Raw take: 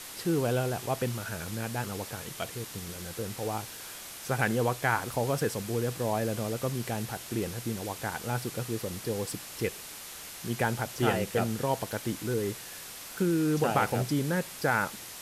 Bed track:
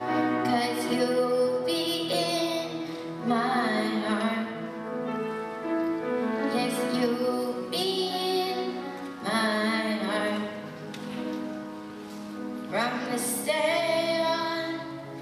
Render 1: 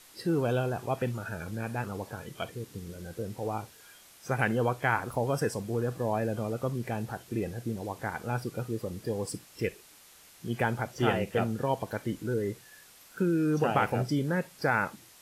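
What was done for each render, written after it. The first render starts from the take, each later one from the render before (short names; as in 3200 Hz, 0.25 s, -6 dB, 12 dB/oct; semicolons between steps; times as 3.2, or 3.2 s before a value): noise print and reduce 12 dB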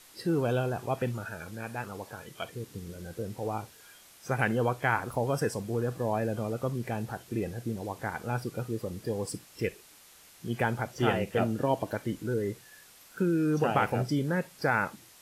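1.25–2.53 low shelf 420 Hz -6.5 dB; 11.4–11.95 small resonant body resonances 300/610/2800 Hz, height 8 dB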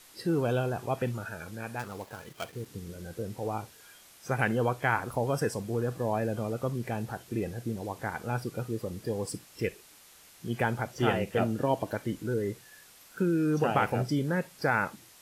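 1.79–2.66 switching dead time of 0.09 ms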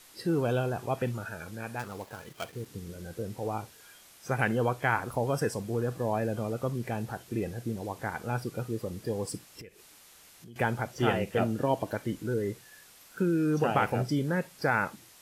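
9.61–10.56 compressor 4:1, threshold -48 dBFS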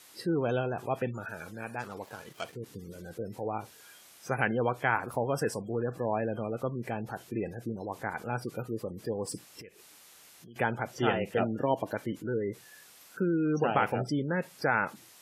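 HPF 160 Hz 6 dB/oct; spectral gate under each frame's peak -30 dB strong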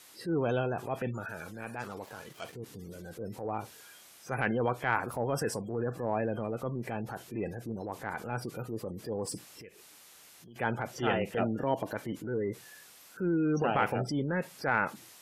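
transient shaper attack -6 dB, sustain +2 dB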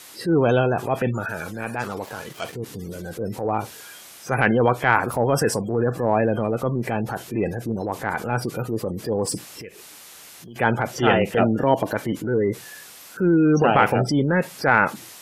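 gain +11.5 dB; limiter -2 dBFS, peak gain reduction 1 dB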